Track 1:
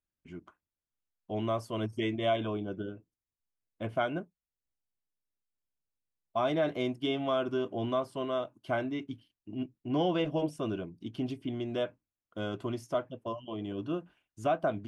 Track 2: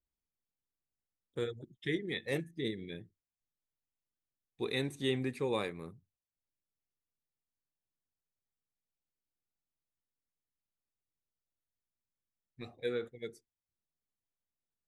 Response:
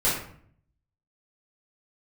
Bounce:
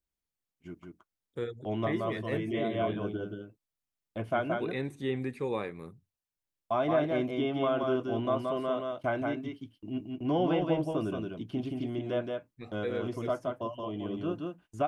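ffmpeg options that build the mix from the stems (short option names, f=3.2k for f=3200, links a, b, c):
-filter_complex "[0:a]agate=range=-25dB:threshold=-51dB:ratio=16:detection=peak,highshelf=f=5.1k:g=5,adelay=350,volume=0.5dB,asplit=2[a][b];[b]volume=-4dB[c];[1:a]volume=1dB,asplit=2[d][e];[e]apad=whole_len=671556[f];[a][f]sidechaincompress=threshold=-38dB:ratio=8:attack=7.1:release=136[g];[c]aecho=0:1:174:1[h];[g][d][h]amix=inputs=3:normalize=0,acrossover=split=2600[i][j];[j]acompressor=threshold=-57dB:ratio=4:attack=1:release=60[k];[i][k]amix=inputs=2:normalize=0"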